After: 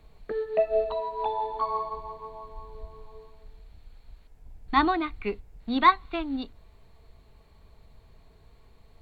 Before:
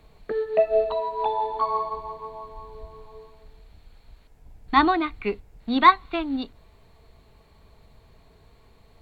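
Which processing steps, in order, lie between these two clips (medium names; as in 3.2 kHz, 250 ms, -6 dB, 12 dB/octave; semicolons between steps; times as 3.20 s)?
bass shelf 63 Hz +7 dB; trim -4 dB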